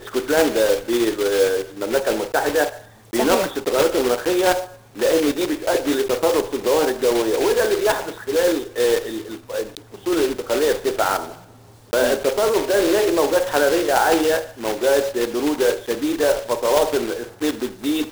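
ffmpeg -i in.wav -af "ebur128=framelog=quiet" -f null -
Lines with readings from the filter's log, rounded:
Integrated loudness:
  I:         -20.0 LUFS
  Threshold: -30.2 LUFS
Loudness range:
  LRA:         3.1 LU
  Threshold: -40.2 LUFS
  LRA low:   -21.9 LUFS
  LRA high:  -18.8 LUFS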